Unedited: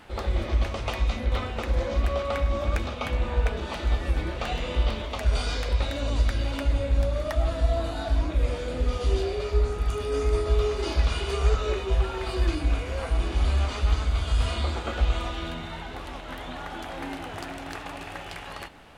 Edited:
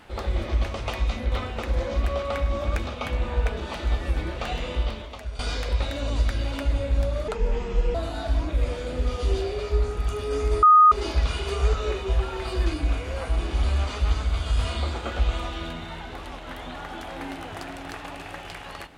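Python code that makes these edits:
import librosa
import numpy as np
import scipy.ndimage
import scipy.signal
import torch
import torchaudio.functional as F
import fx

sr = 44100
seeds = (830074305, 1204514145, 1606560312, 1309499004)

y = fx.edit(x, sr, fx.fade_out_to(start_s=4.64, length_s=0.75, floor_db=-15.0),
    fx.speed_span(start_s=7.28, length_s=0.48, speed=0.72),
    fx.bleep(start_s=10.44, length_s=0.29, hz=1240.0, db=-10.0), tone=tone)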